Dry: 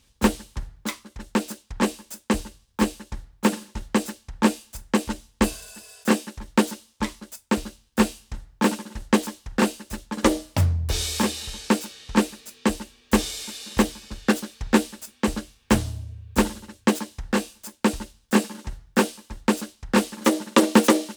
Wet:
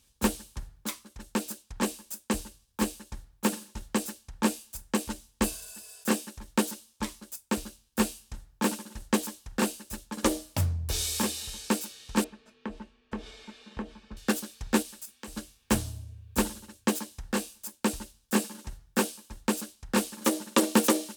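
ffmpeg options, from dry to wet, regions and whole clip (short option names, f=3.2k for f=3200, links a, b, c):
-filter_complex "[0:a]asettb=1/sr,asplit=3[a][b][c];[a]atrim=end=12.244[d];[b]atrim=start=12.24:end=14.17,asetpts=PTS-STARTPTS,afade=t=in:d=0.004:c=qsin,afade=t=out:st=1.926:d=0.004:c=qsin,lowpass=2k,aecho=1:1:4.6:0.37,atrim=end_sample=85113,acompressor=threshold=-29dB:ratio=2.5:attack=3.2:release=140:knee=1:detection=peak[e];[c]atrim=start=14.166[f];[d][e]acrossfade=d=0.004:c1=hsin:c2=qsin[g];[g][f]acrossfade=d=0.004:c1=qsin:c2=hsin,asettb=1/sr,asplit=3[h][i][j];[h]atrim=end=14.824[k];[i]atrim=start=14.82:end=15.37,asetpts=PTS-STARTPTS,afade=t=in:d=0.004:c=qsin,afade=t=out:st=0.546:d=0.004:c=qsin,equalizer=f=210:w=0.31:g=-4.5,acompressor=threshold=-37dB:ratio=2.5:attack=3.2:release=140:knee=1:detection=peak[l];[j]atrim=start=15.366[m];[k][l]acrossfade=d=0.004:c1=hsin:c2=qsin[n];[n][m]acrossfade=d=0.004:c1=qsin:c2=hsin,equalizer=f=14k:t=o:w=1.5:g=9.5,bandreject=f=2k:w=19,volume=-7dB"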